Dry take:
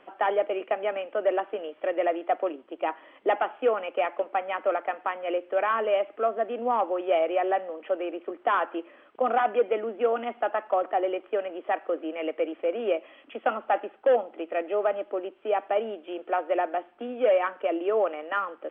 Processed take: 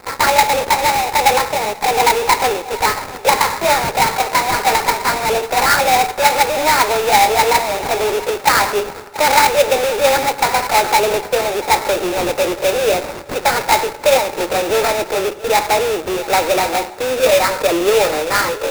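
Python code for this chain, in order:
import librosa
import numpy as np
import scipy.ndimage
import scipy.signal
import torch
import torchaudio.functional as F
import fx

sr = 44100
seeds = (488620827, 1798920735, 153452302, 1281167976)

p1 = fx.pitch_glide(x, sr, semitones=6.0, runs='ending unshifted')
p2 = scipy.signal.sosfilt(scipy.signal.butter(2, 250.0, 'highpass', fs=sr, output='sos'), p1)
p3 = fx.high_shelf(p2, sr, hz=2500.0, db=4.5)
p4 = p3 + 0.57 * np.pad(p3, (int(2.2 * sr / 1000.0), 0))[:len(p3)]
p5 = fx.dynamic_eq(p4, sr, hz=780.0, q=1.3, threshold_db=-37.0, ratio=4.0, max_db=4)
p6 = fx.fuzz(p5, sr, gain_db=46.0, gate_db=-52.0)
p7 = p5 + (p6 * librosa.db_to_amplitude(-12.0))
p8 = fx.sample_hold(p7, sr, seeds[0], rate_hz=3100.0, jitter_pct=20)
p9 = p8 + fx.echo_feedback(p8, sr, ms=683, feedback_pct=32, wet_db=-18, dry=0)
p10 = fx.rev_fdn(p9, sr, rt60_s=1.7, lf_ratio=1.0, hf_ratio=0.65, size_ms=70.0, drr_db=15.5)
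y = p10 * librosa.db_to_amplitude(4.5)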